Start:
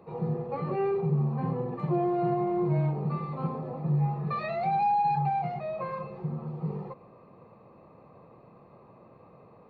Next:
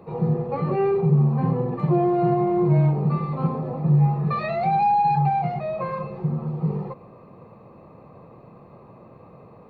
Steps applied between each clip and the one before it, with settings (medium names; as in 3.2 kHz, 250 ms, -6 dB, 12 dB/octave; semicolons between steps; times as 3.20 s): bass shelf 240 Hz +4.5 dB; trim +5.5 dB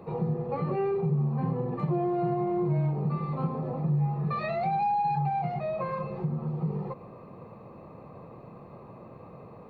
compression 2:1, threshold -31 dBFS, peak gain reduction 9.5 dB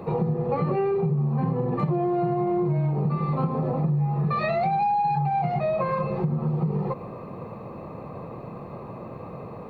compression, threshold -30 dBFS, peak gain reduction 7.5 dB; trim +9 dB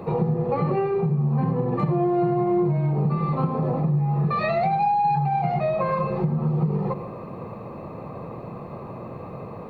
reverberation RT60 0.35 s, pre-delay 73 ms, DRR 13 dB; trim +1.5 dB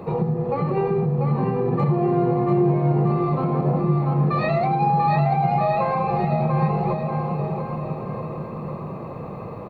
bouncing-ball echo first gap 690 ms, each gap 0.85×, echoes 5